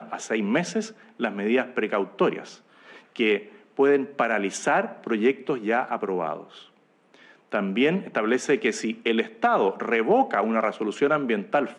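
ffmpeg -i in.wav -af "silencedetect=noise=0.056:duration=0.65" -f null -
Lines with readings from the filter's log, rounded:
silence_start: 2.39
silence_end: 3.20 | silence_duration: 0.81
silence_start: 6.36
silence_end: 7.54 | silence_duration: 1.17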